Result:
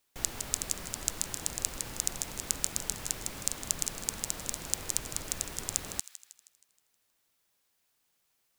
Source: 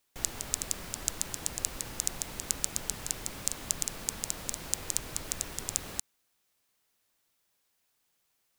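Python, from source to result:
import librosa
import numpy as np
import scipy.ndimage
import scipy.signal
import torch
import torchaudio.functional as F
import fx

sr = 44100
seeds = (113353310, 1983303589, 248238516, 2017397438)

y = fx.echo_wet_highpass(x, sr, ms=158, feedback_pct=48, hz=1900.0, wet_db=-13.0)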